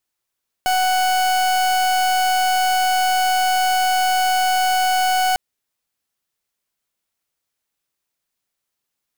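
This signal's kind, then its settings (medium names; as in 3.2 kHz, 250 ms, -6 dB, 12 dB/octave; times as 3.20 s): pulse 743 Hz, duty 39% -17.5 dBFS 4.70 s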